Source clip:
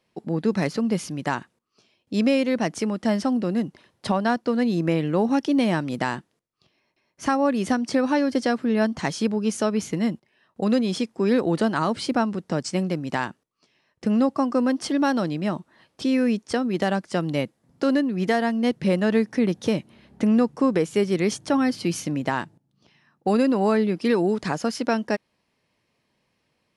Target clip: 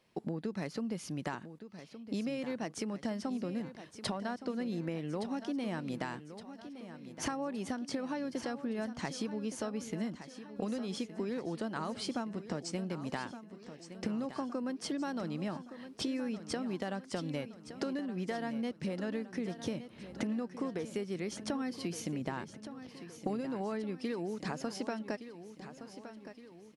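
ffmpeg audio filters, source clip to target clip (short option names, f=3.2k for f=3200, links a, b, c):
-filter_complex "[0:a]asettb=1/sr,asplit=3[a][b][c];[a]atrim=end=22.214[d];[b]atrim=start=22.21:end=23.41,asetpts=PTS-STARTPTS,afade=t=in:d=0.004:c=qsin,afade=t=out:st=1.196:d=0.004:c=qsin,lowshelf=f=400:g=5.5[e];[c]atrim=start=23.406[f];[d][e]acrossfade=d=0.004:c1=hsin:c2=qsin[g];[g][f]acrossfade=d=0.004:c1=qsin:c2=hsin,acompressor=threshold=-34dB:ratio=10,aecho=1:1:1167|2334|3501|4668|5835|7002:0.251|0.136|0.0732|0.0396|0.0214|0.0115"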